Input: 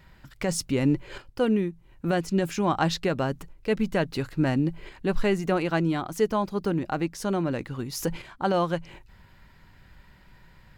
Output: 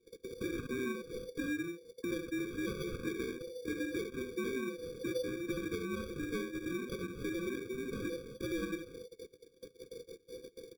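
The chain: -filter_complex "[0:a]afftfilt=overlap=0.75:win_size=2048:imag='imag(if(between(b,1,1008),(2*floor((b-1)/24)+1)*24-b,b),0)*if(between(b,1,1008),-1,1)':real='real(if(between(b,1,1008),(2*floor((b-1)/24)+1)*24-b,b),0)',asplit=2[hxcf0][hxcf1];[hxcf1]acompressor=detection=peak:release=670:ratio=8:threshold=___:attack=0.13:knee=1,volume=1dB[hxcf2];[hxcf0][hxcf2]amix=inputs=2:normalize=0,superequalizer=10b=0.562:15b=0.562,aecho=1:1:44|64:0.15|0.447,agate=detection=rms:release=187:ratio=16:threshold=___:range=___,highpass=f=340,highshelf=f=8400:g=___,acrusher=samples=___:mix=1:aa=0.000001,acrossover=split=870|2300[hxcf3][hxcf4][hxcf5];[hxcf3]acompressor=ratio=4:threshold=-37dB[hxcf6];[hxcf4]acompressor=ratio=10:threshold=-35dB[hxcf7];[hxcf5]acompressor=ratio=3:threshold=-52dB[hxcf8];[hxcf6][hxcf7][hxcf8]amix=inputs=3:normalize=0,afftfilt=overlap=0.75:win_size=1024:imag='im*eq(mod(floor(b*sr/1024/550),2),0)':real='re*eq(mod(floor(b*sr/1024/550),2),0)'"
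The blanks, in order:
-35dB, -41dB, -21dB, -4.5, 33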